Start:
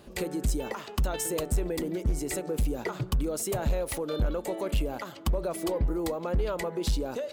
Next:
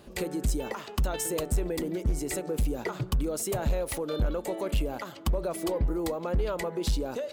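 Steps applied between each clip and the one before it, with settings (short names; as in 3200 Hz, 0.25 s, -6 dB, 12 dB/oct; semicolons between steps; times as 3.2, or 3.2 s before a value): nothing audible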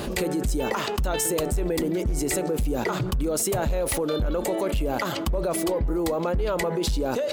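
fast leveller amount 70%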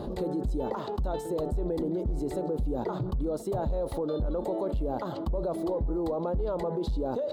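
EQ curve 880 Hz 0 dB, 2500 Hz -22 dB, 3900 Hz -8 dB, 5800 Hz -20 dB; gain -4.5 dB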